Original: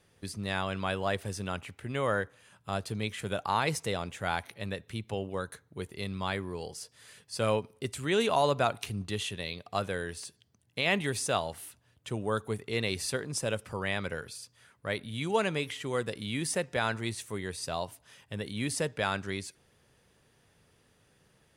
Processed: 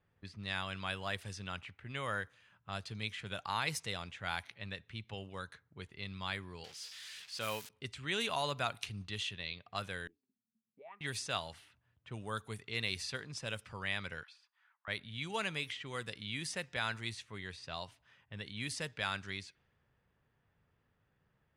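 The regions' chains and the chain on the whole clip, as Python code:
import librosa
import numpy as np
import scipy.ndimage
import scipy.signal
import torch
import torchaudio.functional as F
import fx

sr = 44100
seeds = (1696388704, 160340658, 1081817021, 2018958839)

y = fx.chain(x, sr, fx.crossing_spikes(level_db=-29.5),
    fx.low_shelf(hz=150.0, db=-11.5), at=(6.64, 7.69))
y = fx.chain(y, sr, fx.small_body(hz=(210.0, 390.0, 790.0, 2300.0), ring_ms=70, db=11),
    fx.auto_wah(base_hz=220.0, top_hz=1200.0, q=17.0, full_db=-20.0, direction='up'), at=(10.07, 11.01))
y = fx.chain(y, sr, fx.steep_highpass(hz=770.0, slope=48),
    fx.high_shelf(hz=7200.0, db=-8.5), at=(14.23, 14.88))
y = fx.dynamic_eq(y, sr, hz=9000.0, q=0.7, threshold_db=-53.0, ratio=4.0, max_db=-6)
y = fx.env_lowpass(y, sr, base_hz=1200.0, full_db=-27.0)
y = fx.tone_stack(y, sr, knobs='5-5-5')
y = F.gain(torch.from_numpy(y), 7.0).numpy()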